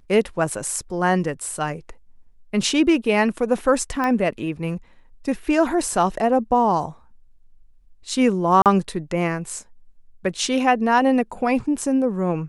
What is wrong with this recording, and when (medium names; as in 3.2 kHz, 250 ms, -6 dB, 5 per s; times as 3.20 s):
4.04 s: pop -12 dBFS
8.62–8.66 s: dropout 38 ms